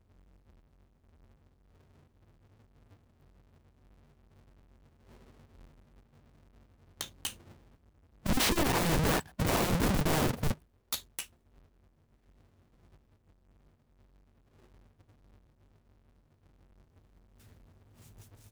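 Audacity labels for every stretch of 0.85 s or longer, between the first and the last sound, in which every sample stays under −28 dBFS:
7.270000	8.260000	silence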